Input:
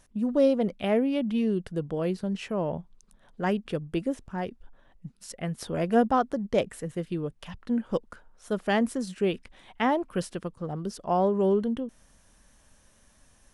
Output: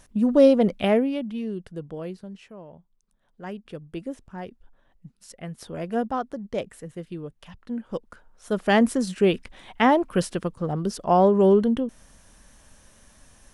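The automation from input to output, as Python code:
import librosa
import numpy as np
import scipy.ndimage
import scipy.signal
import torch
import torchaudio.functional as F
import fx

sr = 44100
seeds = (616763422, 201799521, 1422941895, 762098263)

y = fx.gain(x, sr, db=fx.line((0.84, 6.5), (1.32, -4.5), (1.97, -4.5), (2.68, -15.5), (4.12, -4.0), (7.86, -4.0), (8.8, 6.5)))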